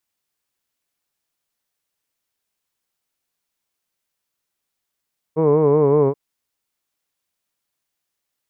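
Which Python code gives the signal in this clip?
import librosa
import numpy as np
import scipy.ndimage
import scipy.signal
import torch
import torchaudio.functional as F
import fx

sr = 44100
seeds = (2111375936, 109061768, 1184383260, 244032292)

y = fx.vowel(sr, seeds[0], length_s=0.78, word='hood', hz=154.0, glide_st=-1.5, vibrato_hz=5.3, vibrato_st=0.9)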